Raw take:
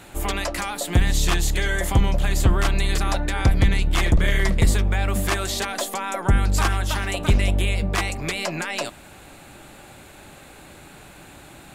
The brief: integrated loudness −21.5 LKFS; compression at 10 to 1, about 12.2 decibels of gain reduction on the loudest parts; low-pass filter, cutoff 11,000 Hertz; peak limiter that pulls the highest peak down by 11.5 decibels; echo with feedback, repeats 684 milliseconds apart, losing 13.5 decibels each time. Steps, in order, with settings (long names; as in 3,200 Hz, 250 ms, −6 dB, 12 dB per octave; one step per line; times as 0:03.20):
low-pass filter 11,000 Hz
downward compressor 10 to 1, threshold −25 dBFS
brickwall limiter −24 dBFS
repeating echo 684 ms, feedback 21%, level −13.5 dB
level +13 dB